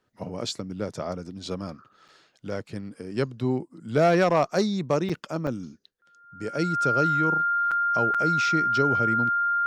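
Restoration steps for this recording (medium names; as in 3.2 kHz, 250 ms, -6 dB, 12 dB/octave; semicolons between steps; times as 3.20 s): band-stop 1.4 kHz, Q 30; interpolate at 2.08/5.09/5.47/7.71/8.14 s, 6 ms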